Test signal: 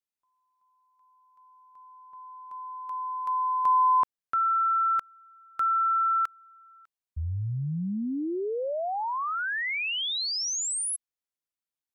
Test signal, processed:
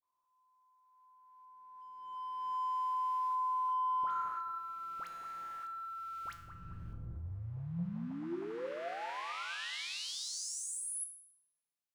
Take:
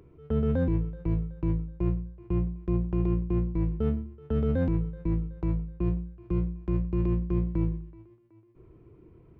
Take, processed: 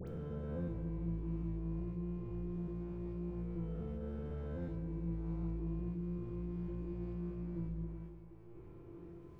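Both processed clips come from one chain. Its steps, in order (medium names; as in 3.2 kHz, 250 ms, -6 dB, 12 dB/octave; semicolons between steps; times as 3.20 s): reverse spectral sustain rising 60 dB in 2.35 s; waveshaping leveller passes 1; reverse; compression 12:1, threshold -33 dBFS; reverse; feedback comb 170 Hz, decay 0.74 s, harmonics all, mix 80%; phase dispersion highs, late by 77 ms, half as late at 1.4 kHz; on a send: bucket-brigade echo 218 ms, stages 2048, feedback 41%, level -8.5 dB; on the sum: trim +5.5 dB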